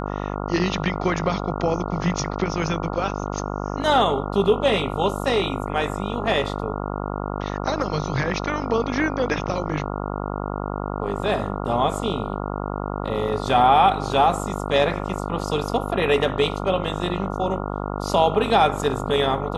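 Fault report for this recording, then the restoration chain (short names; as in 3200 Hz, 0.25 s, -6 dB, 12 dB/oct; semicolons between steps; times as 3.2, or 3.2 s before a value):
buzz 50 Hz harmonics 28 -28 dBFS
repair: de-hum 50 Hz, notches 28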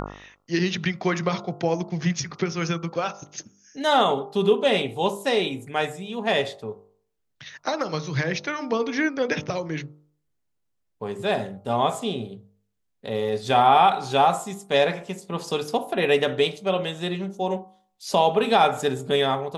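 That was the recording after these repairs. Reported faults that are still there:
none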